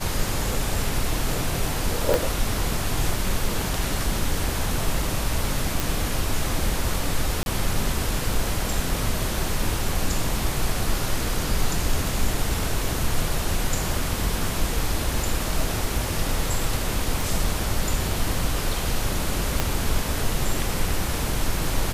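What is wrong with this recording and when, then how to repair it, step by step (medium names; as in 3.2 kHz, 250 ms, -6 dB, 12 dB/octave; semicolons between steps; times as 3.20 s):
2.14 s: pop
5.80 s: pop
7.43–7.46 s: dropout 31 ms
17.21 s: pop
19.60 s: pop -6 dBFS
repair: de-click; interpolate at 7.43 s, 31 ms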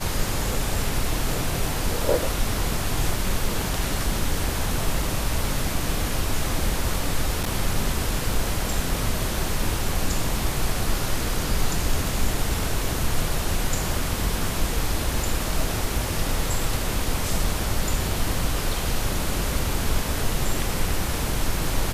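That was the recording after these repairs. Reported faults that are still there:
2.14 s: pop
17.21 s: pop
19.60 s: pop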